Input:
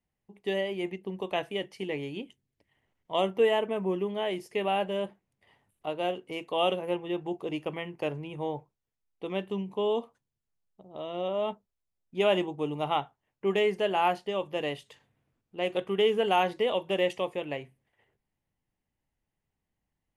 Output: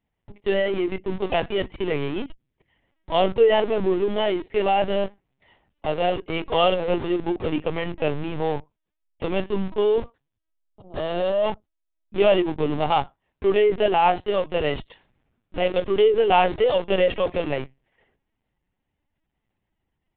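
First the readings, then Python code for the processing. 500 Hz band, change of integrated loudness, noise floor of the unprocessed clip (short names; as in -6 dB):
+8.0 dB, +7.5 dB, -85 dBFS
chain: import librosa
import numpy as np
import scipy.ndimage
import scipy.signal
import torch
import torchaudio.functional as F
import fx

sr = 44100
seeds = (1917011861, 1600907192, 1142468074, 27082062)

p1 = fx.schmitt(x, sr, flips_db=-40.5)
p2 = x + (p1 * 10.0 ** (-7.0 / 20.0))
p3 = fx.lpc_vocoder(p2, sr, seeds[0], excitation='pitch_kept', order=16)
y = p3 * 10.0 ** (6.0 / 20.0)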